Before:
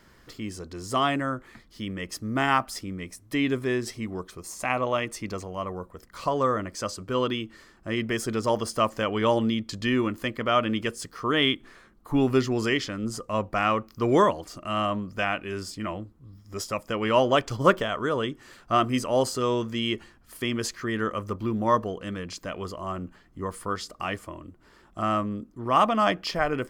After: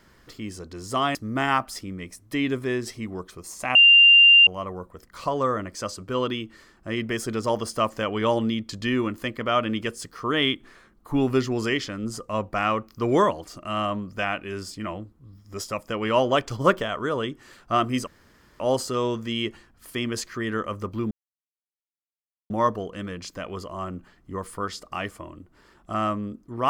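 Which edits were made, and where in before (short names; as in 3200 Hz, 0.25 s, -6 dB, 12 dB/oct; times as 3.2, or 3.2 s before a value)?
1.15–2.15 cut
4.75–5.47 bleep 2790 Hz -9.5 dBFS
19.07 insert room tone 0.53 s
21.58 insert silence 1.39 s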